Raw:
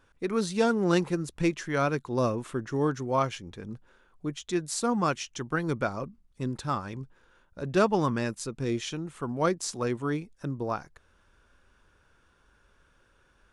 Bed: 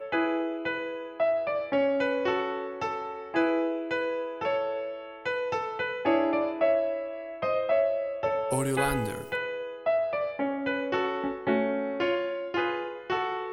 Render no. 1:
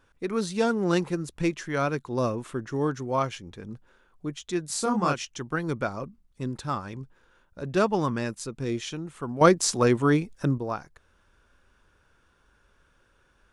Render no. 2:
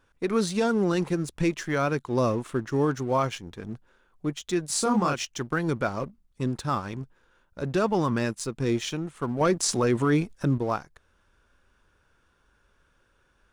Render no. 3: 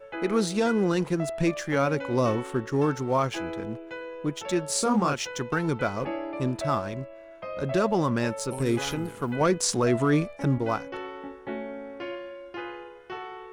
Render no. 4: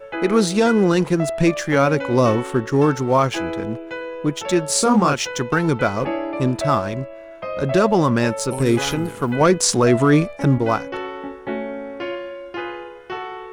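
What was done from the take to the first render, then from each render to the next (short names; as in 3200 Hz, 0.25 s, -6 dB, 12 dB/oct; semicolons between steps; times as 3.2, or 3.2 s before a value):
4.67–5.25 doubler 28 ms -3 dB; 9.41–10.58 gain +8.5 dB
sample leveller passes 1; limiter -15 dBFS, peak gain reduction 10 dB
add bed -8.5 dB
gain +8 dB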